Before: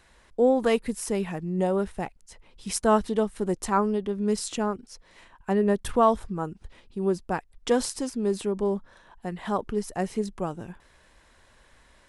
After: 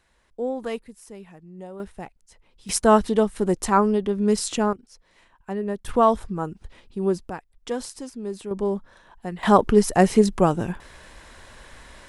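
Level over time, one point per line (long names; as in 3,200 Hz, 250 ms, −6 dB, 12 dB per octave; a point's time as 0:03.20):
−7 dB
from 0:00.84 −14 dB
from 0:01.80 −5 dB
from 0:02.69 +5 dB
from 0:04.73 −5 dB
from 0:05.88 +2.5 dB
from 0:07.30 −5.5 dB
from 0:08.51 +1.5 dB
from 0:09.43 +12 dB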